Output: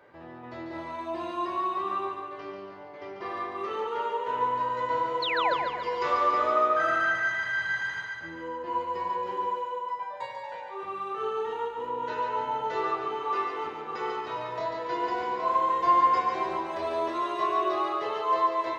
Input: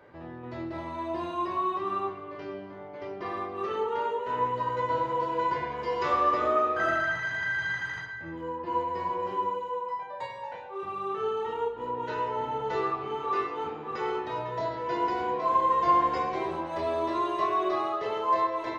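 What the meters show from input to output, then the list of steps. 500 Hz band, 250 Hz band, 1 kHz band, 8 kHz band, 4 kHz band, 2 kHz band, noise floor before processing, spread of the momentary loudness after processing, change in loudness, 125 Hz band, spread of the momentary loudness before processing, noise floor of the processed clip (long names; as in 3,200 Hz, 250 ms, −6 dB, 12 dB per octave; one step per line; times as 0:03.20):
−1.0 dB, −2.5 dB, +1.0 dB, can't be measured, +4.5 dB, +2.0 dB, −41 dBFS, 14 LU, +0.5 dB, −7.0 dB, 13 LU, −42 dBFS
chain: low-shelf EQ 290 Hz −8 dB
sound drawn into the spectrogram fall, 0:05.22–0:05.54, 460–4,500 Hz −30 dBFS
feedback echo with a high-pass in the loop 143 ms, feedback 54%, high-pass 330 Hz, level −5 dB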